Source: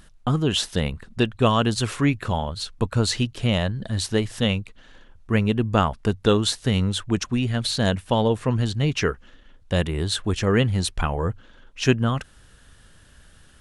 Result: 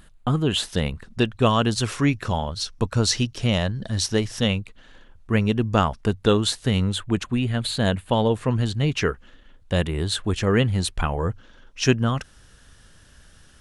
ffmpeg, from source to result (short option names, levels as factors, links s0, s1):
-af "asetnsamples=n=441:p=0,asendcmd='0.65 equalizer g 3;1.96 equalizer g 10;4.48 equalizer g -2;5.41 equalizer g 9;6.01 equalizer g -2;6.96 equalizer g -12.5;8.13 equalizer g -2.5;11.12 equalizer g 6',equalizer=f=5600:t=o:w=0.35:g=-9"